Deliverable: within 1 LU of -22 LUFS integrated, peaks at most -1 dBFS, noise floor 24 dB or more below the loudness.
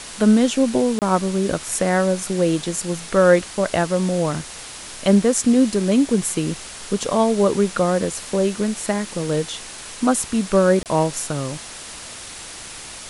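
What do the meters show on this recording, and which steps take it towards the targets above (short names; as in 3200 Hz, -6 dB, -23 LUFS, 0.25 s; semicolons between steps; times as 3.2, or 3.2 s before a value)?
dropouts 2; longest dropout 28 ms; noise floor -36 dBFS; noise floor target -44 dBFS; loudness -19.5 LUFS; peak -3.0 dBFS; loudness target -22.0 LUFS
-> interpolate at 0.99/10.83, 28 ms; noise print and reduce 8 dB; gain -2.5 dB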